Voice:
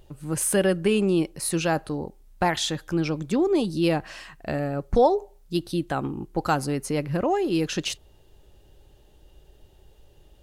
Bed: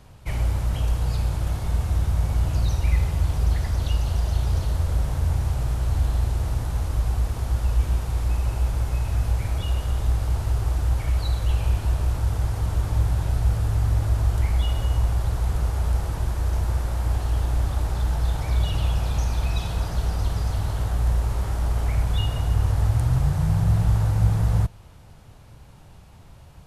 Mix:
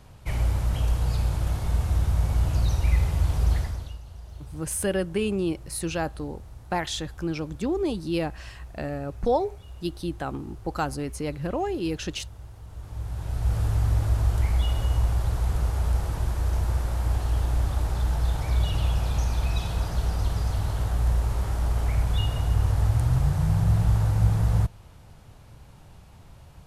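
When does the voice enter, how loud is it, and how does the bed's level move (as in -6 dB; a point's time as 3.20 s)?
4.30 s, -4.5 dB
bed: 3.58 s -1 dB
4.01 s -19 dB
12.65 s -19 dB
13.59 s -1.5 dB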